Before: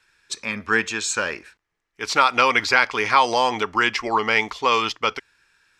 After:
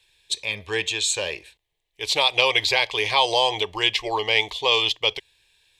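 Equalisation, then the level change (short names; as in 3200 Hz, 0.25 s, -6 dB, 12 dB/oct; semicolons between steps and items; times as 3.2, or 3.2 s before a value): tone controls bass +4 dB, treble +14 dB; resonant high shelf 4400 Hz -7.5 dB, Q 3; fixed phaser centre 570 Hz, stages 4; 0.0 dB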